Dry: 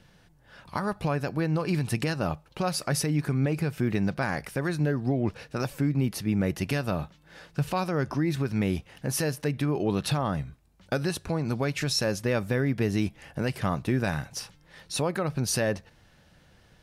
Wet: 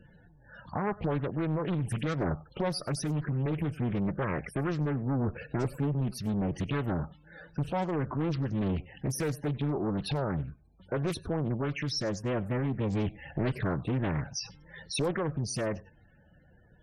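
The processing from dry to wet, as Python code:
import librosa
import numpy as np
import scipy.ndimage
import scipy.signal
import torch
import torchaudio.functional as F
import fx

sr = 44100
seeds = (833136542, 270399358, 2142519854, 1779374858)

y = fx.tube_stage(x, sr, drive_db=27.0, bias=0.35)
y = fx.rider(y, sr, range_db=10, speed_s=0.5)
y = fx.spec_topn(y, sr, count=32)
y = y + 10.0 ** (-22.5 / 20.0) * np.pad(y, (int(97 * sr / 1000.0), 0))[:len(y)]
y = fx.doppler_dist(y, sr, depth_ms=0.81)
y = F.gain(torch.from_numpy(y), 2.5).numpy()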